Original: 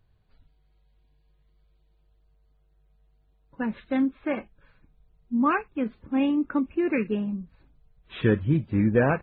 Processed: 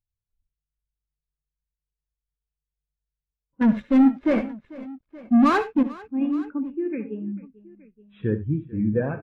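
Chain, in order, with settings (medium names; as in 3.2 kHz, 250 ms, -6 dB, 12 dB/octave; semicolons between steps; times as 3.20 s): 3.61–5.83 s: waveshaping leveller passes 5; multi-tap echo 65/74/94/444/873 ms -13.5/-12.5/-15/-13.5/-14.5 dB; spectral contrast expander 1.5:1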